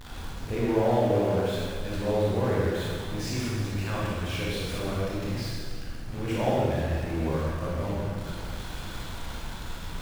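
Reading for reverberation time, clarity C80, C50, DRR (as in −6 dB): 2.0 s, −1.0 dB, −3.5 dB, −7.0 dB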